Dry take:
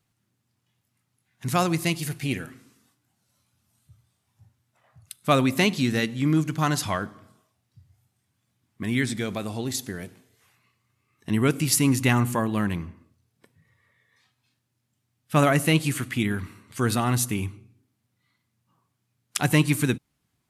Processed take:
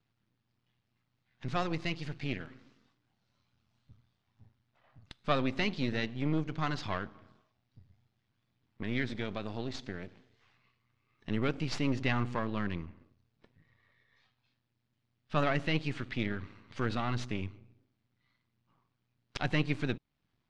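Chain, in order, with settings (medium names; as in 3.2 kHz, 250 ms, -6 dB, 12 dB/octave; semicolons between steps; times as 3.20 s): partial rectifier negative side -12 dB; low-pass 4.7 kHz 24 dB/octave; in parallel at +1.5 dB: compression, threshold -40 dBFS, peak gain reduction 22.5 dB; on the sum: trim -7.5 dB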